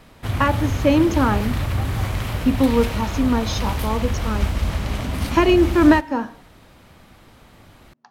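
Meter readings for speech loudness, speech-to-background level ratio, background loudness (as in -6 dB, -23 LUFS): -20.0 LUFS, 5.0 dB, -25.0 LUFS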